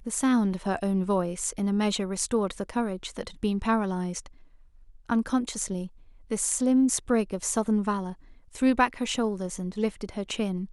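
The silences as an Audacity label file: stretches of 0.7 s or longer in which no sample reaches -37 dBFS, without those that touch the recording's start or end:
4.270000	5.090000	silence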